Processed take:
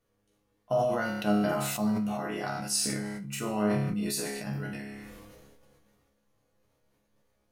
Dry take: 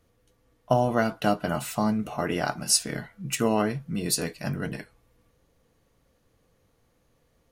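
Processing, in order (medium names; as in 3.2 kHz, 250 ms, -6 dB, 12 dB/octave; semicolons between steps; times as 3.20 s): peaking EQ 81 Hz -13 dB 0.35 oct; chord resonator C#2 fifth, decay 0.53 s; decay stretcher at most 25 dB/s; trim +6 dB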